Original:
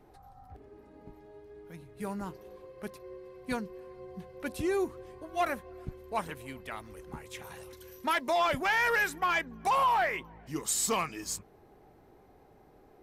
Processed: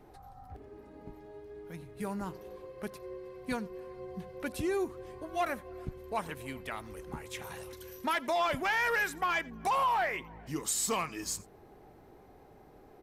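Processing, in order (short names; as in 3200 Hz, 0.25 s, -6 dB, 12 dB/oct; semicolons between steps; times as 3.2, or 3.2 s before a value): in parallel at +3 dB: compressor, threshold -38 dBFS, peak gain reduction 13.5 dB; on the sum: echo 87 ms -22.5 dB; gain -5 dB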